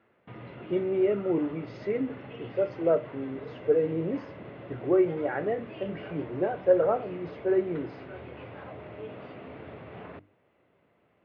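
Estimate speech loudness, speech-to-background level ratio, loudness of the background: -29.0 LUFS, 15.0 dB, -44.0 LUFS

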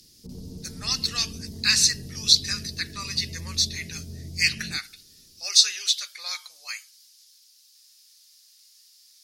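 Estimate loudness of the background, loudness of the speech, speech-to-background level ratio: -40.5 LUFS, -23.0 LUFS, 17.5 dB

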